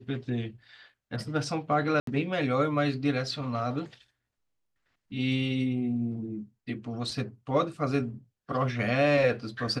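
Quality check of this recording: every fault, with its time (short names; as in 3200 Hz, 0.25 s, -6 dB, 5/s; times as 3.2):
2–2.07 gap 73 ms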